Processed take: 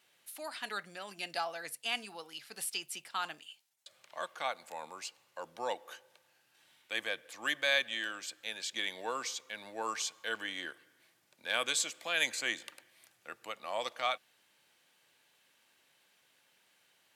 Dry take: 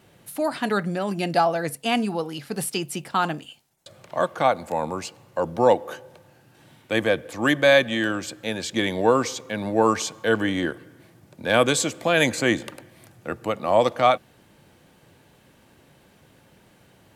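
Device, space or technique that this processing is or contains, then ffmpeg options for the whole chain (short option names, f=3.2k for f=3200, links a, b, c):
filter by subtraction: -filter_complex "[0:a]asplit=2[a][b];[b]lowpass=3k,volume=-1[c];[a][c]amix=inputs=2:normalize=0,volume=-8.5dB"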